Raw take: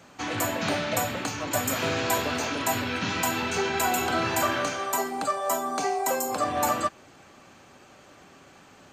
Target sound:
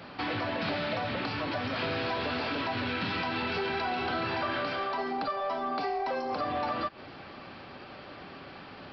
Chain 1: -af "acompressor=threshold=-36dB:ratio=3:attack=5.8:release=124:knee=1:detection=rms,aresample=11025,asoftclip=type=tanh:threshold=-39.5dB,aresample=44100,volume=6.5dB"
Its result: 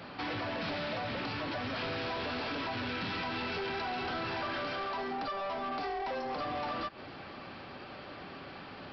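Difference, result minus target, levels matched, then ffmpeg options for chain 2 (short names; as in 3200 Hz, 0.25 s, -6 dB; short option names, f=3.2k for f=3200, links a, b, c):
soft clip: distortion +10 dB
-af "acompressor=threshold=-36dB:ratio=3:attack=5.8:release=124:knee=1:detection=rms,aresample=11025,asoftclip=type=tanh:threshold=-30dB,aresample=44100,volume=6.5dB"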